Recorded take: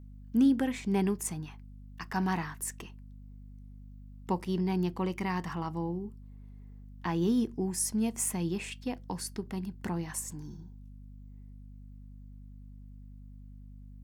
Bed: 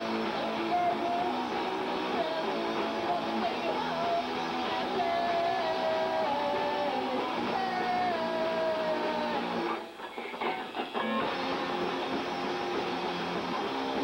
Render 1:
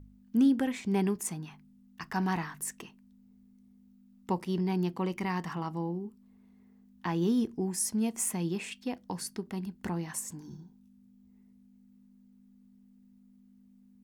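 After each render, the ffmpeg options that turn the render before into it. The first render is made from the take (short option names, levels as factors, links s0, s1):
-af "bandreject=f=50:t=h:w=4,bandreject=f=100:t=h:w=4,bandreject=f=150:t=h:w=4"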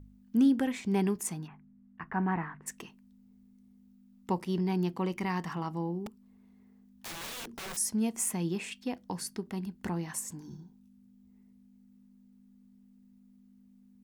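-filter_complex "[0:a]asplit=3[s0][s1][s2];[s0]afade=t=out:st=1.46:d=0.02[s3];[s1]lowpass=f=2100:w=0.5412,lowpass=f=2100:w=1.3066,afade=t=in:st=1.46:d=0.02,afade=t=out:st=2.66:d=0.02[s4];[s2]afade=t=in:st=2.66:d=0.02[s5];[s3][s4][s5]amix=inputs=3:normalize=0,asettb=1/sr,asplit=3[s6][s7][s8];[s6]atrim=end=6.064[s9];[s7]atrim=start=6.06:end=7.77,asetpts=PTS-STARTPTS,afade=t=in:d=0.004:c=qsin,afade=t=out:st=1.706:d=0.004:c=qsin,aeval=exprs='(mod(63.1*val(0)+1,2)-1)/63.1':c=same[s10];[s8]atrim=start=7.766[s11];[s9][s10]acrossfade=d=0.004:c1=hsin:c2=qsin[s12];[s12][s11]acrossfade=d=0.004:c1=qsin:c2=hsin"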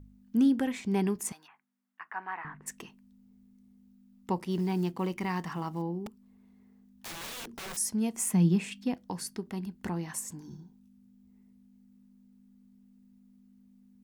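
-filter_complex "[0:a]asettb=1/sr,asplit=3[s0][s1][s2];[s0]atrim=end=1.324[s3];[s1]atrim=start=1.32:end=2.45,asetpts=PTS-STARTPTS,afade=t=in:d=0.004:c=qsin,afade=t=out:st=1.126:d=0.004:c=qsin,highpass=940[s4];[s2]atrim=start=2.446[s5];[s3][s4]acrossfade=d=0.004:c1=hsin:c2=qsin[s6];[s6][s5]acrossfade=d=0.004:c1=qsin:c2=hsin,asettb=1/sr,asplit=3[s7][s8][s9];[s7]atrim=end=4.514[s10];[s8]atrim=start=4.51:end=5.82,asetpts=PTS-STARTPTS,afade=t=in:d=0.004:c=qsin,afade=t=out:st=1.306:d=0.004:c=qsin,acrusher=bits=8:mode=log:mix=0:aa=0.000001[s11];[s9]atrim=start=5.816[s12];[s10][s11]acrossfade=d=0.004:c1=hsin:c2=qsin[s13];[s13][s12]acrossfade=d=0.004:c1=qsin:c2=hsin,asettb=1/sr,asplit=3[s14][s15][s16];[s14]atrim=end=8.334[s17];[s15]atrim=start=8.33:end=8.94,asetpts=PTS-STARTPTS,afade=t=in:d=0.004:c=qsin,afade=t=out:st=0.606:d=0.004:c=qsin,equalizer=f=180:t=o:w=0.77:g=11.5[s18];[s16]atrim=start=8.936[s19];[s17][s18]acrossfade=d=0.004:c1=hsin:c2=qsin[s20];[s20][s19]acrossfade=d=0.004:c1=qsin:c2=hsin"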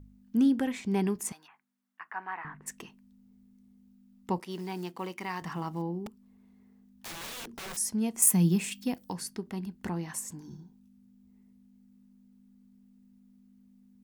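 -filter_complex "[0:a]asettb=1/sr,asplit=3[s0][s1][s2];[s0]atrim=end=4.404[s3];[s1]atrim=start=4.4:end=5.42,asetpts=PTS-STARTPTS,afade=t=in:d=0.004:c=qsin,afade=t=out:st=1.016:d=0.004:c=qsin,highpass=f=520:p=1[s4];[s2]atrim=start=5.416[s5];[s3][s4]acrossfade=d=0.004:c1=hsin:c2=qsin[s6];[s6][s5]acrossfade=d=0.004:c1=qsin:c2=hsin,asettb=1/sr,asplit=3[s7][s8][s9];[s7]atrim=end=8.224[s10];[s8]atrim=start=8.22:end=9.13,asetpts=PTS-STARTPTS,afade=t=in:d=0.004:c=qsin,afade=t=out:st=0.906:d=0.004:c=qsin,aemphasis=mode=production:type=50fm[s11];[s9]atrim=start=9.126[s12];[s10][s11]acrossfade=d=0.004:c1=hsin:c2=qsin[s13];[s13][s12]acrossfade=d=0.004:c1=qsin:c2=hsin"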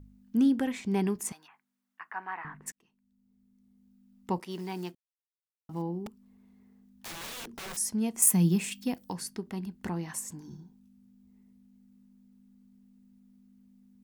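-filter_complex "[0:a]asplit=4[s0][s1][s2][s3];[s0]atrim=end=2.72,asetpts=PTS-STARTPTS,afade=t=out:st=2.716:d=0.004:c=hsin[s4];[s1]atrim=start=2.72:end=4.95,asetpts=PTS-STARTPTS,afade=t=in:d=1.64,afade=t=out:st=2.226:d=0.004:c=hsin[s5];[s2]atrim=start=4.95:end=5.69,asetpts=PTS-STARTPTS,volume=0[s6];[s3]atrim=start=5.69,asetpts=PTS-STARTPTS,afade=t=in:d=0.004:c=hsin[s7];[s4][s5][s6][s7]concat=n=4:v=0:a=1"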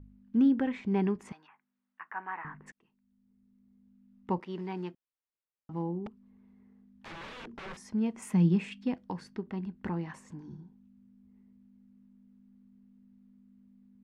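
-af "lowpass=2400,bandreject=f=710:w=12"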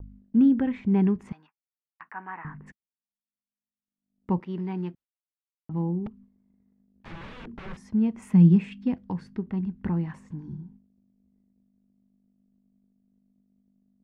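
-af "bass=f=250:g=11,treble=f=4000:g=-7,agate=range=0.00562:threshold=0.00316:ratio=16:detection=peak"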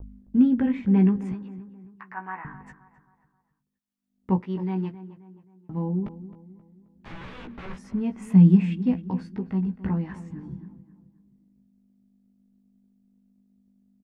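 -filter_complex "[0:a]asplit=2[s0][s1];[s1]adelay=16,volume=0.596[s2];[s0][s2]amix=inputs=2:normalize=0,asplit=2[s3][s4];[s4]adelay=265,lowpass=f=2300:p=1,volume=0.188,asplit=2[s5][s6];[s6]adelay=265,lowpass=f=2300:p=1,volume=0.44,asplit=2[s7][s8];[s8]adelay=265,lowpass=f=2300:p=1,volume=0.44,asplit=2[s9][s10];[s10]adelay=265,lowpass=f=2300:p=1,volume=0.44[s11];[s3][s5][s7][s9][s11]amix=inputs=5:normalize=0"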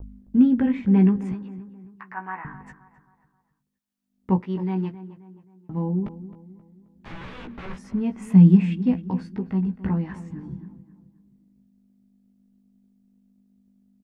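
-af "volume=1.26"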